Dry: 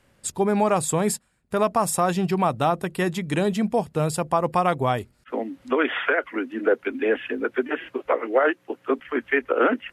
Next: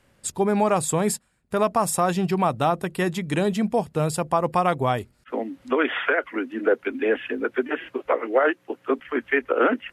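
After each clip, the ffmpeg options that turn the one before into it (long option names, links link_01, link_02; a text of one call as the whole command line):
ffmpeg -i in.wav -af anull out.wav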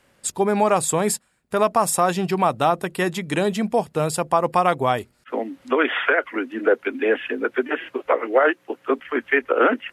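ffmpeg -i in.wav -af "lowshelf=frequency=170:gain=-10,volume=3.5dB" out.wav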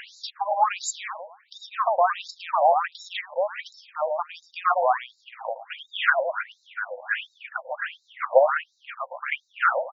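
ffmpeg -i in.wav -filter_complex "[0:a]asplit=2[link_01][link_02];[link_02]adelay=111,lowpass=frequency=3200:poles=1,volume=-4dB,asplit=2[link_03][link_04];[link_04]adelay=111,lowpass=frequency=3200:poles=1,volume=0.28,asplit=2[link_05][link_06];[link_06]adelay=111,lowpass=frequency=3200:poles=1,volume=0.28,asplit=2[link_07][link_08];[link_08]adelay=111,lowpass=frequency=3200:poles=1,volume=0.28[link_09];[link_01][link_03][link_05][link_07][link_09]amix=inputs=5:normalize=0,acompressor=mode=upward:threshold=-20dB:ratio=2.5,afftfilt=real='re*between(b*sr/1024,670*pow(5300/670,0.5+0.5*sin(2*PI*1.4*pts/sr))/1.41,670*pow(5300/670,0.5+0.5*sin(2*PI*1.4*pts/sr))*1.41)':imag='im*between(b*sr/1024,670*pow(5300/670,0.5+0.5*sin(2*PI*1.4*pts/sr))/1.41,670*pow(5300/670,0.5+0.5*sin(2*PI*1.4*pts/sr))*1.41)':win_size=1024:overlap=0.75,volume=1.5dB" out.wav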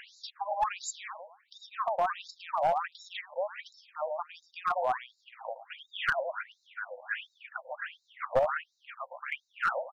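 ffmpeg -i in.wav -af "aeval=exprs='clip(val(0),-1,0.2)':channel_layout=same,volume=-8dB" out.wav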